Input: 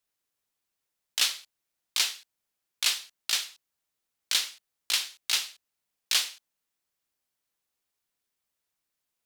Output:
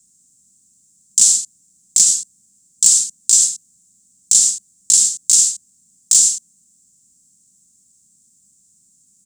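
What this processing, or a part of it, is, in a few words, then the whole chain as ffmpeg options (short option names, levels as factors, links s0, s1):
loud club master: -af "highpass=57,firequalizer=gain_entry='entry(110,0);entry(190,9);entry(420,-19);entry(870,-27);entry(1400,-26);entry(2200,-30);entry(7500,14);entry(12000,-15)':delay=0.05:min_phase=1,acompressor=threshold=0.0355:ratio=1.5,asoftclip=type=hard:threshold=0.133,alimiter=level_in=22.4:limit=0.891:release=50:level=0:latency=1,volume=0.891"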